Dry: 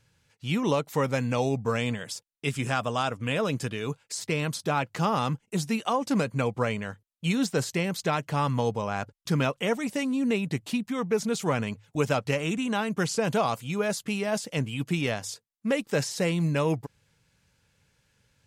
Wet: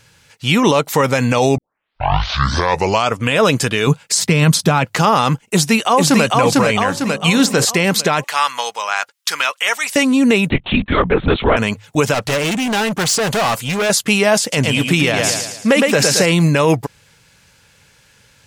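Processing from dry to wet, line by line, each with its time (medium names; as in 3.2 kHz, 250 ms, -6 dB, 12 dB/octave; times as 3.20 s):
1.58 s: tape start 1.60 s
3.87–4.85 s: peaking EQ 170 Hz +11.5 dB 0.92 oct
5.49–6.26 s: echo throw 450 ms, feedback 45%, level -1 dB
6.88–7.65 s: de-hum 51.16 Hz, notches 25
8.24–9.96 s: high-pass 1.3 kHz
10.50–11.57 s: LPC vocoder at 8 kHz whisper
12.14–13.90 s: overload inside the chain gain 31 dB
14.41–16.26 s: feedback delay 111 ms, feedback 45%, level -6 dB
whole clip: bass shelf 420 Hz -7.5 dB; loudness maximiser +21.5 dB; trim -2.5 dB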